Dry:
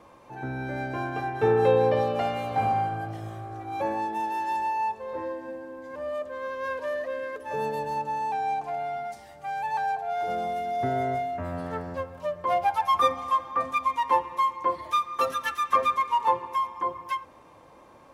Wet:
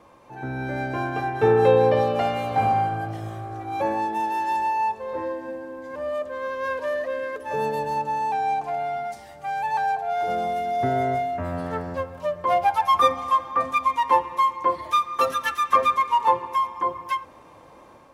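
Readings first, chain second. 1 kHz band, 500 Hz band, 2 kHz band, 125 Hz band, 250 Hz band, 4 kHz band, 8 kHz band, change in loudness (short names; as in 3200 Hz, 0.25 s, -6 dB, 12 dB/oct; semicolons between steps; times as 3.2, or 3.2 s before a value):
+4.0 dB, +4.0 dB, +4.0 dB, +4.0 dB, +4.0 dB, +4.0 dB, n/a, +4.0 dB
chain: AGC gain up to 4 dB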